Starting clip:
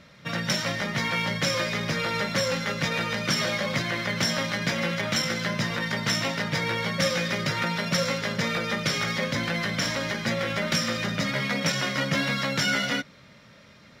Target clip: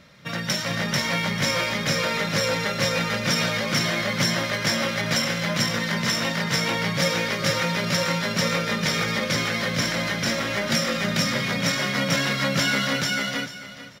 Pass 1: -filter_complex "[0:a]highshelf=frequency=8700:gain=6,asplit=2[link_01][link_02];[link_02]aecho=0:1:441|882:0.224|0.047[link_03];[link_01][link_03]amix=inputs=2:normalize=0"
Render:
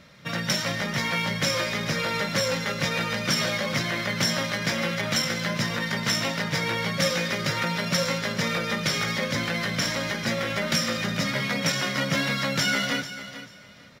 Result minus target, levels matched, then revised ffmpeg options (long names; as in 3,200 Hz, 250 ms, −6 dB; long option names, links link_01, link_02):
echo-to-direct −12 dB
-filter_complex "[0:a]highshelf=frequency=8700:gain=6,asplit=2[link_01][link_02];[link_02]aecho=0:1:441|882|1323:0.891|0.187|0.0393[link_03];[link_01][link_03]amix=inputs=2:normalize=0"